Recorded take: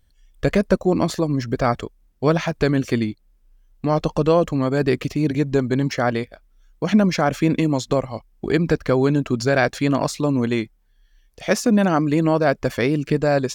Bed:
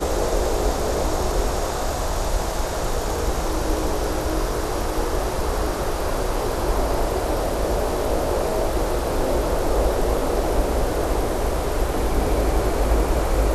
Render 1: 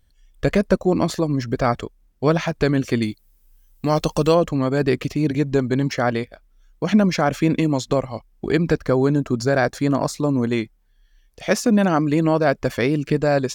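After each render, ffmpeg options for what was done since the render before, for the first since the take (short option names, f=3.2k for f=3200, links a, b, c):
-filter_complex "[0:a]asettb=1/sr,asplit=3[a][b][c];[a]atrim=end=3.024[d];[b]atrim=start=3.02:end=4.35,asetpts=PTS-STARTPTS,afade=t=in:d=0.004:c=qsin,afade=t=out:st=1.326:d=0.004:c=qsin,aemphasis=mode=production:type=75kf[e];[c]atrim=start=4.346[f];[d][e]acrossfade=d=0.004:c1=hsin:c2=qsin[g];[g][f]acrossfade=d=0.004:c1=qsin:c2=hsin,asettb=1/sr,asplit=3[h][i][j];[h]atrim=end=8.844[k];[i]atrim=start=8.84:end=10.53,asetpts=PTS-STARTPTS,afade=t=in:d=0.004:c=qsin,afade=t=out:st=1.686:d=0.004:c=qsin,equalizer=f=2.8k:w=1.5:g=-8.5[l];[j]atrim=start=10.526[m];[k][l]acrossfade=d=0.004:c1=hsin:c2=qsin[n];[n][m]acrossfade=d=0.004:c1=qsin:c2=hsin"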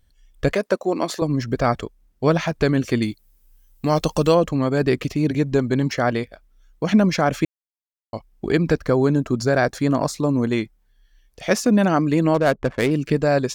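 -filter_complex "[0:a]asettb=1/sr,asplit=3[a][b][c];[a]atrim=end=0.534[d];[b]atrim=start=0.53:end=1.22,asetpts=PTS-STARTPTS,afade=t=in:d=0.004:c=qsin,afade=t=out:st=0.686:d=0.004:c=qsin,highpass=350[e];[c]atrim=start=1.216[f];[d][e]acrossfade=d=0.004:c1=hsin:c2=qsin[g];[g][f]acrossfade=d=0.004:c1=qsin:c2=hsin,asettb=1/sr,asplit=3[h][i][j];[h]atrim=end=12.344[k];[i]atrim=start=12.34:end=12.91,asetpts=PTS-STARTPTS,afade=t=in:d=0.004:c=qsin,afade=t=out:st=0.566:d=0.004:c=qsin,adynamicsmooth=sensitivity=3:basefreq=550[l];[j]atrim=start=12.906[m];[k][l]acrossfade=d=0.004:c1=hsin:c2=qsin[n];[n][m]acrossfade=d=0.004:c1=qsin:c2=hsin,asplit=3[o][p][q];[o]atrim=end=7.45,asetpts=PTS-STARTPTS,afade=t=out:st=7.446:d=0.004:c=hsin[r];[p]atrim=start=7.45:end=8.13,asetpts=PTS-STARTPTS,volume=0[s];[q]atrim=start=8.13,asetpts=PTS-STARTPTS,afade=t=in:d=0.004:c=hsin[t];[r][s][t]concat=n=3:v=0:a=1"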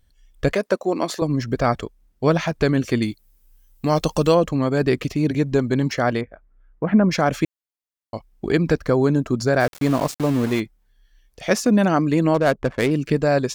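-filter_complex "[0:a]asettb=1/sr,asplit=3[a][b][c];[a]atrim=end=6.214[d];[b]atrim=start=6.21:end=7.11,asetpts=PTS-STARTPTS,afade=t=in:d=0.004:c=qsin,afade=t=out:st=0.896:d=0.004:c=qsin,lowpass=f=1.9k:w=0.5412,lowpass=f=1.9k:w=1.3066[e];[c]atrim=start=7.106[f];[d][e]acrossfade=d=0.004:c1=hsin:c2=qsin[g];[g][f]acrossfade=d=0.004:c1=qsin:c2=hsin,asplit=3[h][i][j];[h]afade=t=out:st=9.59:d=0.02[k];[i]aeval=exprs='val(0)*gte(abs(val(0)),0.0422)':c=same,afade=t=in:st=9.59:d=0.02,afade=t=out:st=10.59:d=0.02[l];[j]afade=t=in:st=10.59:d=0.02[m];[k][l][m]amix=inputs=3:normalize=0"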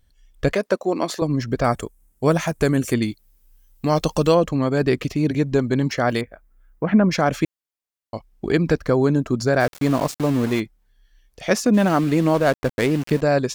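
-filter_complex "[0:a]asettb=1/sr,asplit=3[a][b][c];[a]atrim=end=1.644[d];[b]atrim=start=1.64:end=2.94,asetpts=PTS-STARTPTS,afade=t=in:d=0.004:c=qsin,afade=t=out:st=1.296:d=0.004:c=qsin,highshelf=f=6.3k:t=q:w=1.5:g=11.5[e];[c]atrim=start=2.936[f];[d][e]acrossfade=d=0.004:c1=hsin:c2=qsin[g];[g][f]acrossfade=d=0.004:c1=qsin:c2=hsin,asplit=3[h][i][j];[h]afade=t=out:st=6.09:d=0.02[k];[i]aemphasis=mode=production:type=75kf,afade=t=in:st=6.09:d=0.02,afade=t=out:st=7.06:d=0.02[l];[j]afade=t=in:st=7.06:d=0.02[m];[k][l][m]amix=inputs=3:normalize=0,asplit=3[n][o][p];[n]afade=t=out:st=11.73:d=0.02[q];[o]aeval=exprs='val(0)*gte(abs(val(0)),0.0316)':c=same,afade=t=in:st=11.73:d=0.02,afade=t=out:st=13.2:d=0.02[r];[p]afade=t=in:st=13.2:d=0.02[s];[q][r][s]amix=inputs=3:normalize=0"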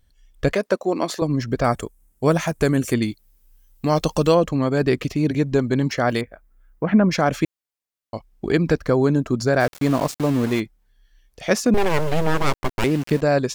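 -filter_complex "[0:a]asettb=1/sr,asplit=3[a][b][c];[a]atrim=end=11.744[d];[b]atrim=start=11.74:end=12.84,asetpts=PTS-STARTPTS,afade=t=in:d=0.004:c=qsin,afade=t=out:st=1.096:d=0.004:c=qsin,aeval=exprs='abs(val(0))':c=same[e];[c]atrim=start=12.836[f];[d][e]acrossfade=d=0.004:c1=hsin:c2=qsin[g];[g][f]acrossfade=d=0.004:c1=qsin:c2=hsin"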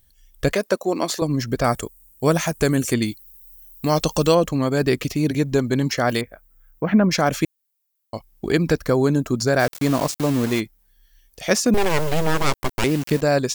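-filter_complex "[0:a]acrossover=split=8300[a][b];[b]acompressor=threshold=-49dB:ratio=4:attack=1:release=60[c];[a][c]amix=inputs=2:normalize=0,aemphasis=mode=production:type=50fm"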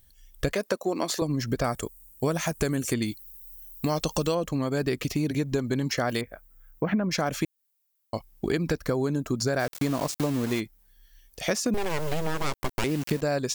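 -af "acompressor=threshold=-23dB:ratio=6"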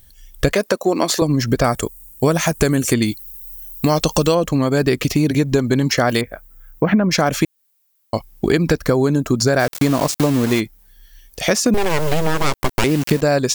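-af "volume=10.5dB,alimiter=limit=-2dB:level=0:latency=1"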